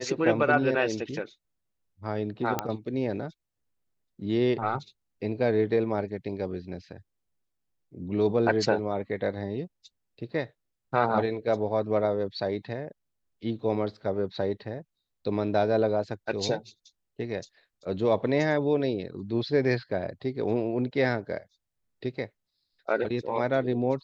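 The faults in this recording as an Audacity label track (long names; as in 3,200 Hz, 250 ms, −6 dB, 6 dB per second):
2.590000	2.590000	click −11 dBFS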